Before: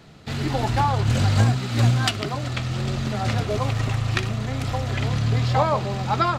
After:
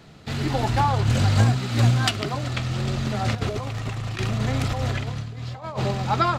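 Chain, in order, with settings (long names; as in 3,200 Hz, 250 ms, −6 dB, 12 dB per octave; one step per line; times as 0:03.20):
0:03.35–0:05.91: compressor whose output falls as the input rises −26 dBFS, ratio −0.5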